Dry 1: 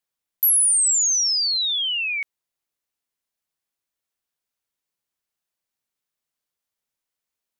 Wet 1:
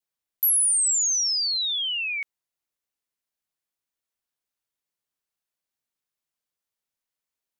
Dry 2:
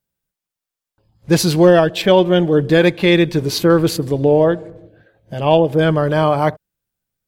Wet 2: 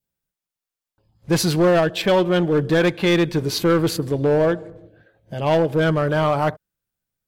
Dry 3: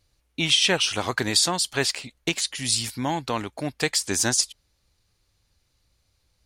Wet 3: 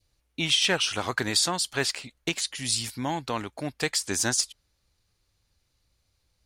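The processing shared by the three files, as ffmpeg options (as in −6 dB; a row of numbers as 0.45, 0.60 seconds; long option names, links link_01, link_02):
-filter_complex "[0:a]adynamicequalizer=threshold=0.0282:dfrequency=1400:dqfactor=2:tfrequency=1400:tqfactor=2:attack=5:release=100:ratio=0.375:range=2:mode=boostabove:tftype=bell,asplit=2[link_01][link_02];[link_02]aeval=exprs='0.282*(abs(mod(val(0)/0.282+3,4)-2)-1)':channel_layout=same,volume=-5.5dB[link_03];[link_01][link_03]amix=inputs=2:normalize=0,volume=-7dB"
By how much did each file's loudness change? −3.5, −4.5, −3.0 LU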